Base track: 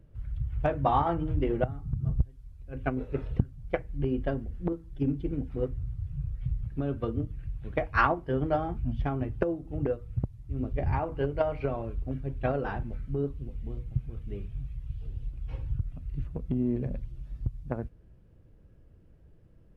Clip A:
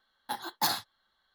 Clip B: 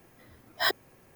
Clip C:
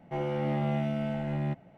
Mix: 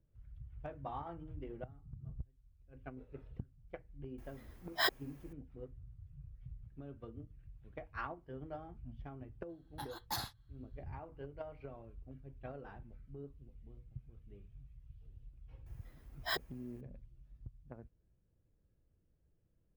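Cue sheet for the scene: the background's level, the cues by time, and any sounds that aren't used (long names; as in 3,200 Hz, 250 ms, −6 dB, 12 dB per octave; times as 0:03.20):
base track −18.5 dB
0:04.18: mix in B −5.5 dB
0:09.49: mix in A −11.5 dB
0:15.66: mix in B −10.5 dB
not used: C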